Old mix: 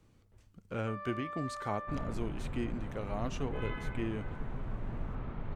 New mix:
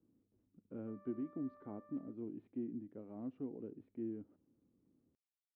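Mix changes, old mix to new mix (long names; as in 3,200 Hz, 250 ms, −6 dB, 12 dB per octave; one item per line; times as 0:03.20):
speech: add high-frequency loss of the air 250 metres
second sound: muted
master: add resonant band-pass 280 Hz, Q 3.2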